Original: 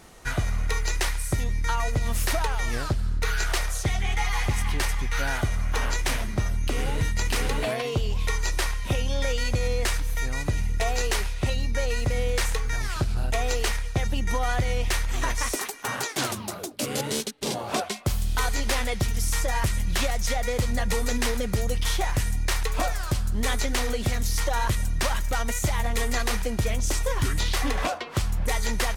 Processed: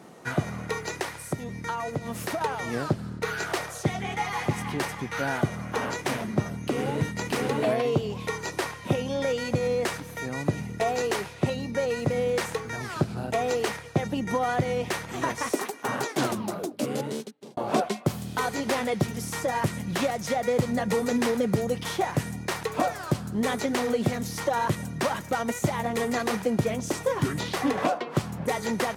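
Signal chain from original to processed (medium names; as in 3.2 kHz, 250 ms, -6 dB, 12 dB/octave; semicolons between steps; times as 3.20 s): high-pass 140 Hz 24 dB/octave; tilt shelf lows +6.5 dB, about 1.3 kHz; 1.01–2.41 s: compression 2:1, threshold -30 dBFS, peak gain reduction 7 dB; 16.60–17.57 s: fade out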